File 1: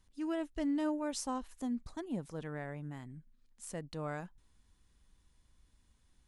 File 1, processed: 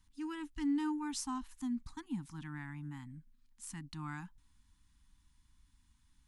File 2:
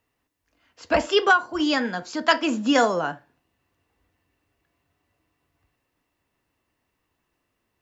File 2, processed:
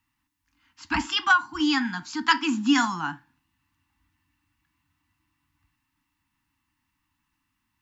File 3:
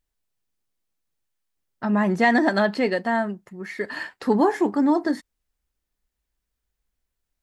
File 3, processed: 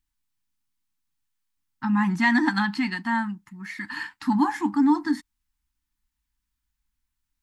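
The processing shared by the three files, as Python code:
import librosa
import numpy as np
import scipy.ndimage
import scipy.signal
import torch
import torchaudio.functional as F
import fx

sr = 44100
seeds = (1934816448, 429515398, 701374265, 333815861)

y = scipy.signal.sosfilt(scipy.signal.ellip(3, 1.0, 40, [300.0, 860.0], 'bandstop', fs=sr, output='sos'), x)
y = fx.dynamic_eq(y, sr, hz=500.0, q=1.9, threshold_db=-44.0, ratio=4.0, max_db=6)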